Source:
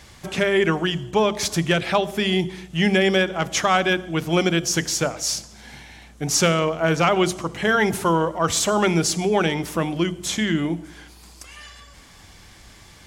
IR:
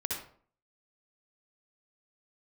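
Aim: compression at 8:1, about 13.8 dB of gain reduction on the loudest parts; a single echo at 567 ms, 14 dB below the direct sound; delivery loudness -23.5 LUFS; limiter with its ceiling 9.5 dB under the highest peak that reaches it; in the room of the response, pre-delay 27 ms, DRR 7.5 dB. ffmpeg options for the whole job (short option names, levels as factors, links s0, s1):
-filter_complex "[0:a]acompressor=threshold=0.0355:ratio=8,alimiter=level_in=1.33:limit=0.0631:level=0:latency=1,volume=0.75,aecho=1:1:567:0.2,asplit=2[s0][s1];[1:a]atrim=start_sample=2205,adelay=27[s2];[s1][s2]afir=irnorm=-1:irlink=0,volume=0.266[s3];[s0][s3]amix=inputs=2:normalize=0,volume=4.22"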